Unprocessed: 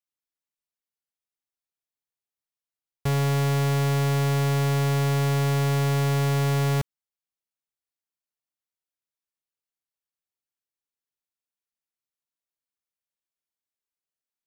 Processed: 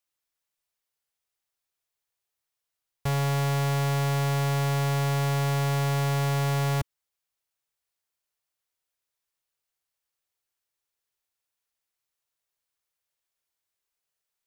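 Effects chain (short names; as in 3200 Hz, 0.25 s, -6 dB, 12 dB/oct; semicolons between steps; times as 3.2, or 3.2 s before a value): bell 230 Hz -13 dB 0.67 oct; soft clip -31 dBFS, distortion -11 dB; gain +7.5 dB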